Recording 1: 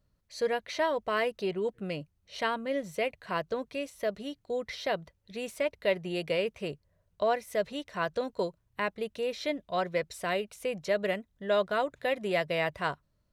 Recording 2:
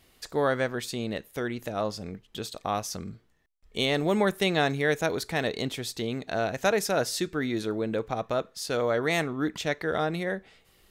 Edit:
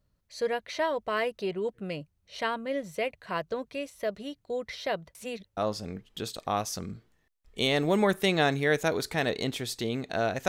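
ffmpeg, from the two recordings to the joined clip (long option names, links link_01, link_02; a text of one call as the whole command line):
ffmpeg -i cue0.wav -i cue1.wav -filter_complex "[0:a]apad=whole_dur=10.48,atrim=end=10.48,asplit=2[link_01][link_02];[link_01]atrim=end=5.152[link_03];[link_02]atrim=start=5.148:end=5.572,asetpts=PTS-STARTPTS,areverse[link_04];[1:a]atrim=start=1.748:end=6.66[link_05];[link_03][link_04]acrossfade=duration=0.004:curve1=hsin:curve2=hsin[link_06];[link_06][link_05]acrossfade=duration=0.004:curve1=hsin:curve2=hsin" out.wav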